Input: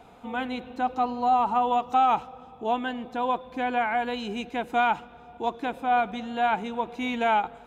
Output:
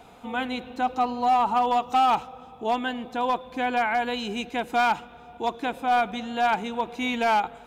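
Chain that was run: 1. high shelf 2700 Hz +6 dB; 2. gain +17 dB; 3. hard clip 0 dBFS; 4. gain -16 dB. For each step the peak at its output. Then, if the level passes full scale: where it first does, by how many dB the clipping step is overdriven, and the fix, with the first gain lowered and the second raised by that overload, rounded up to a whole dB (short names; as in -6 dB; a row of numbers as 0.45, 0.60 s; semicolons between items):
-11.5, +5.5, 0.0, -16.0 dBFS; step 2, 5.5 dB; step 2 +11 dB, step 4 -10 dB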